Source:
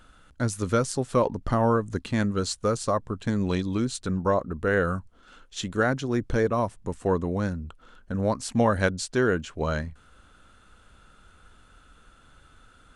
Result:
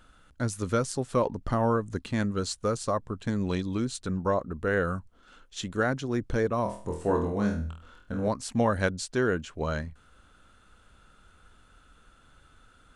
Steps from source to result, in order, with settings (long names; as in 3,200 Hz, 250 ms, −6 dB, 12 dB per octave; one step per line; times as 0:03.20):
0:06.63–0:08.28: flutter between parallel walls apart 4.2 metres, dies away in 0.42 s
level −3 dB